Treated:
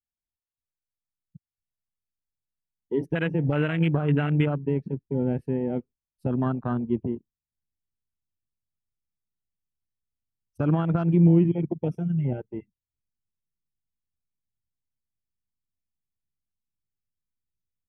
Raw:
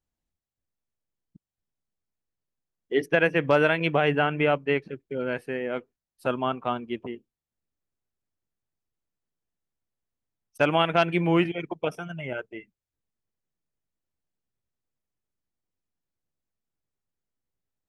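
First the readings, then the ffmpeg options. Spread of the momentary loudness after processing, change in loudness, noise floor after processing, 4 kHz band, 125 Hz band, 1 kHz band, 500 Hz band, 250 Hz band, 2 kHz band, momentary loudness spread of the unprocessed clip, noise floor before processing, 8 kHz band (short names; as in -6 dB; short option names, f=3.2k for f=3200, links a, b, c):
12 LU, +0.5 dB, under -85 dBFS, under -10 dB, +9.5 dB, -9.0 dB, -4.5 dB, +5.0 dB, -10.0 dB, 14 LU, under -85 dBFS, n/a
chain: -af "alimiter=limit=-16.5dB:level=0:latency=1:release=95,asubboost=boost=6.5:cutoff=240,afwtdn=0.0282"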